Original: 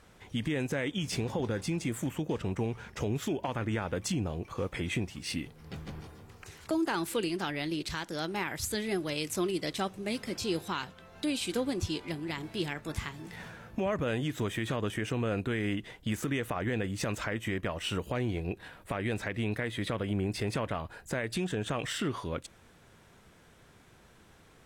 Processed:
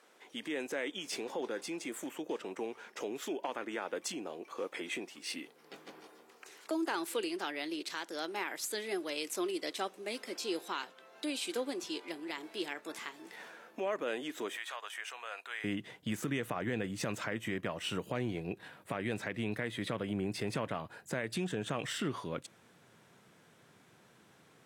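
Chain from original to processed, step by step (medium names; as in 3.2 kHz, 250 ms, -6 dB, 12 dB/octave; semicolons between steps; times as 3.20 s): high-pass 300 Hz 24 dB/octave, from 14.57 s 780 Hz, from 15.64 s 120 Hz; trim -3 dB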